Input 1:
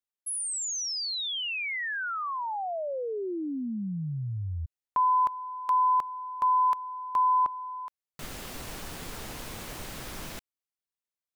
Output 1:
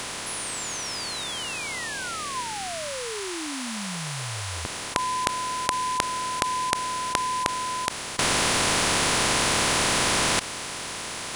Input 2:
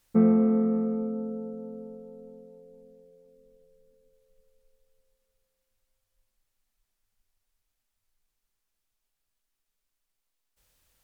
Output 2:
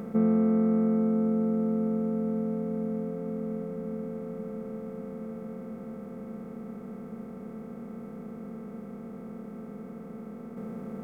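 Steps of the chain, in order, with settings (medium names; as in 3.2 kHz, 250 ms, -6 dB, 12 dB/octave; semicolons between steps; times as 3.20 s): spectral levelling over time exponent 0.2; trim -5 dB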